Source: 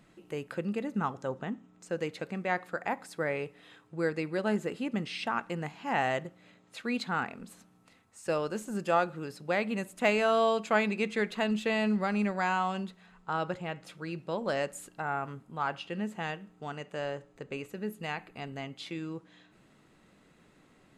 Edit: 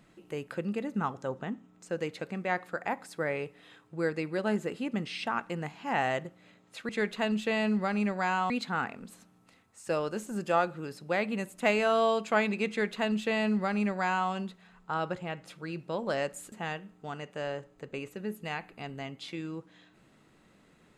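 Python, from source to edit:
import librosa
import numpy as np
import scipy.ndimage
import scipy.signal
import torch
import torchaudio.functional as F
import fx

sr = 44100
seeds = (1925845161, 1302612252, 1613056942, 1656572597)

y = fx.edit(x, sr, fx.duplicate(start_s=11.08, length_s=1.61, to_s=6.89),
    fx.cut(start_s=14.91, length_s=1.19), tone=tone)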